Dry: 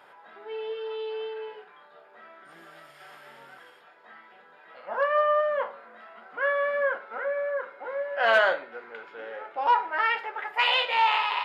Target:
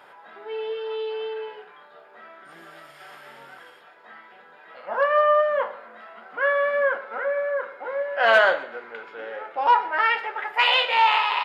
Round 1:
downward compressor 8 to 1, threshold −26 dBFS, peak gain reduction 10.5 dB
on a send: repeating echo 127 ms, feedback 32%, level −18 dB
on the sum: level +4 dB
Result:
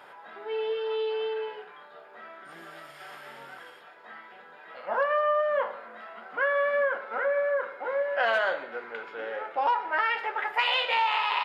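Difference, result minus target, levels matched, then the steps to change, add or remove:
downward compressor: peak gain reduction +10.5 dB
remove: downward compressor 8 to 1, threshold −26 dBFS, peak gain reduction 10.5 dB

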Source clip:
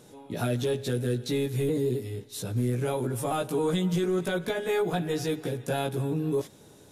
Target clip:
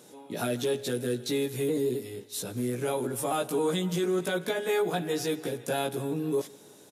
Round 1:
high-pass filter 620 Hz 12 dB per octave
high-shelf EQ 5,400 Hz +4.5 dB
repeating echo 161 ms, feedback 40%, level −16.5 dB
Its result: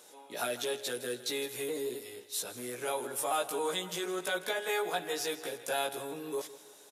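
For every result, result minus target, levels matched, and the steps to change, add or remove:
250 Hz band −7.5 dB; echo-to-direct +8.5 dB
change: high-pass filter 200 Hz 12 dB per octave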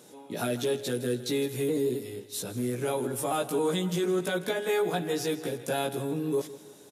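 echo-to-direct +8.5 dB
change: repeating echo 161 ms, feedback 40%, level −25 dB

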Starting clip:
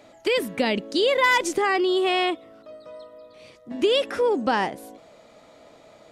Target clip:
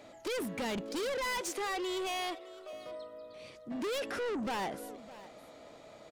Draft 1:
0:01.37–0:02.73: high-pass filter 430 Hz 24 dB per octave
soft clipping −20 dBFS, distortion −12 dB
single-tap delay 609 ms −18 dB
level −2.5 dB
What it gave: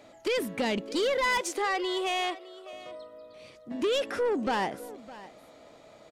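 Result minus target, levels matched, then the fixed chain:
soft clipping: distortion −7 dB
0:01.37–0:02.73: high-pass filter 430 Hz 24 dB per octave
soft clipping −30.5 dBFS, distortion −4 dB
single-tap delay 609 ms −18 dB
level −2.5 dB

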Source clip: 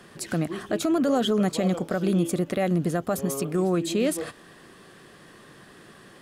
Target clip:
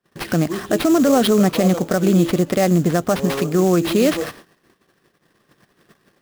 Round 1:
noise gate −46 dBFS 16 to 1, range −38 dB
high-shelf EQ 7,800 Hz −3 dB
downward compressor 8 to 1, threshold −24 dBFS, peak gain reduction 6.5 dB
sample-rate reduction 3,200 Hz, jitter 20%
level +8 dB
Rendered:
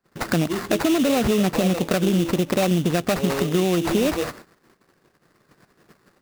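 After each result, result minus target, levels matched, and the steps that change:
downward compressor: peak gain reduction +6.5 dB; sample-rate reduction: distortion +5 dB
remove: downward compressor 8 to 1, threshold −24 dBFS, peak gain reduction 6.5 dB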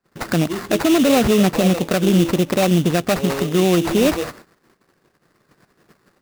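sample-rate reduction: distortion +5 dB
change: sample-rate reduction 7,100 Hz, jitter 20%

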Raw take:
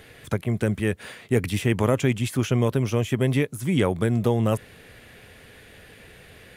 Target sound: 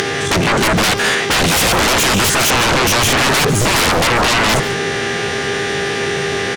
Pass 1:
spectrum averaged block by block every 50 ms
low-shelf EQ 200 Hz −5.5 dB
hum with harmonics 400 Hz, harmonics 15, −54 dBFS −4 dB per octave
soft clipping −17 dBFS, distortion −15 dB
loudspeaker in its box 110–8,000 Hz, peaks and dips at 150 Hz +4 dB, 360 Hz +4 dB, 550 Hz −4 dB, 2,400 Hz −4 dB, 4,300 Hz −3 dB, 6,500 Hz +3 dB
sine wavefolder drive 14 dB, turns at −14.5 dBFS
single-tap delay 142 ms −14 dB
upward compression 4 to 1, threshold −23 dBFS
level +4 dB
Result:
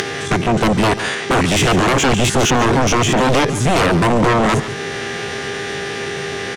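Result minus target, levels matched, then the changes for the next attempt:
sine wavefolder: distortion −12 dB
change: sine wavefolder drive 23 dB, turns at −14.5 dBFS

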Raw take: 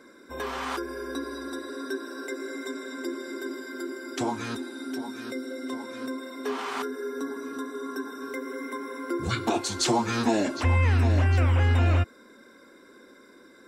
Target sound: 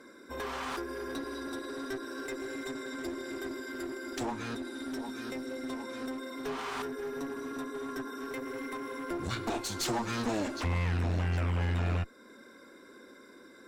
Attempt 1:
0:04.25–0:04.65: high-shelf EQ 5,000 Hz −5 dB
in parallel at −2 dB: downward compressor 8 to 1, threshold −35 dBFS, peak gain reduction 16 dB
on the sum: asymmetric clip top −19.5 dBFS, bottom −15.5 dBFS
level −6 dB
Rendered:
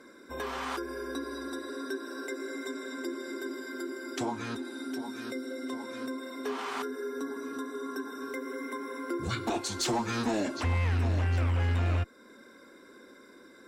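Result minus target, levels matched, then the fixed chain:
asymmetric clip: distortion −7 dB
0:04.25–0:04.65: high-shelf EQ 5,000 Hz −5 dB
in parallel at −2 dB: downward compressor 8 to 1, threshold −35 dBFS, peak gain reduction 16 dB
on the sum: asymmetric clip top −30.5 dBFS, bottom −15.5 dBFS
level −6 dB

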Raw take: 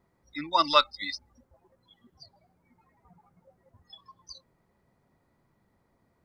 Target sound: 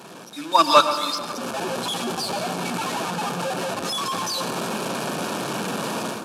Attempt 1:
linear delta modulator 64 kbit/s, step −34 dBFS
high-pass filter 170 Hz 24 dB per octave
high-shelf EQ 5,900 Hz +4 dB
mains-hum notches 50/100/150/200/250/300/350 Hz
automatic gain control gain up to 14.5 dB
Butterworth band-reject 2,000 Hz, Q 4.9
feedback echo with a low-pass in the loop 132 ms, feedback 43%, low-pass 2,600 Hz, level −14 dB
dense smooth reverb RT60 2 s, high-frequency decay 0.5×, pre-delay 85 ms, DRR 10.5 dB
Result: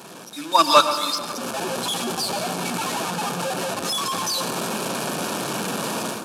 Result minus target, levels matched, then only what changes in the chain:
8,000 Hz band +3.0 dB
change: high-shelf EQ 5,900 Hz −2.5 dB

